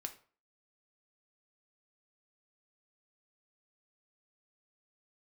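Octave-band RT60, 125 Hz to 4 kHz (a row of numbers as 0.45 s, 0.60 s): 0.45 s, 0.40 s, 0.40 s, 0.40 s, 0.35 s, 0.30 s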